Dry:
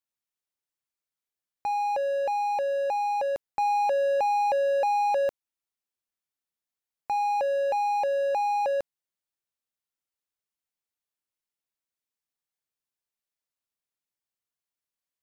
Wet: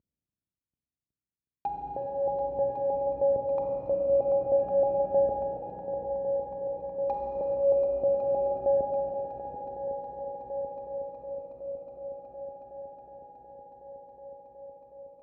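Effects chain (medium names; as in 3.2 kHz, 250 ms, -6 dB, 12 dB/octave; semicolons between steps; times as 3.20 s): CVSD coder 32 kbps; low-pass 1.5 kHz 6 dB/octave; low-pass that closes with the level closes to 570 Hz, closed at -27.5 dBFS; high-pass 51 Hz; tilt shelf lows +9.5 dB, about 800 Hz; multi-head delay 368 ms, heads second and third, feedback 74%, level -9.5 dB; Schroeder reverb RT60 4 s, combs from 32 ms, DRR 0.5 dB; Shepard-style phaser rising 0.26 Hz; trim +2.5 dB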